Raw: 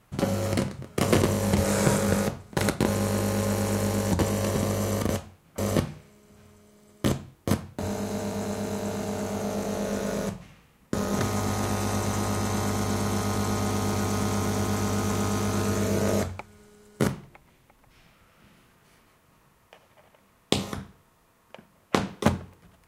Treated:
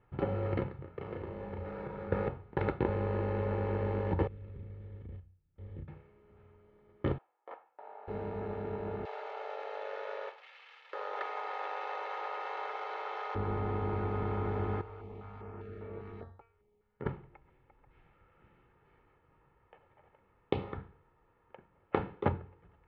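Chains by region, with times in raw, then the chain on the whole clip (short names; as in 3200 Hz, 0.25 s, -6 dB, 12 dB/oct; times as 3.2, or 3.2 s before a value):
0.77–2.12 compressor 8:1, threshold -31 dBFS + doubler 35 ms -5 dB
4.27–5.88 passive tone stack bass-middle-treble 10-0-1 + doubler 33 ms -5.5 dB + decimation joined by straight lines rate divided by 4×
7.18–8.08 ladder high-pass 610 Hz, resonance 45% + high shelf 4300 Hz -11 dB
9.05–13.35 switching spikes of -27.5 dBFS + steep high-pass 500 Hz + high shelf 2600 Hz +11.5 dB
14.81–17.06 resonator 230 Hz, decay 0.46 s, mix 80% + stepped notch 5 Hz 220–6200 Hz
whole clip: Bessel low-pass 1700 Hz, order 6; comb 2.3 ms, depth 54%; gain -6.5 dB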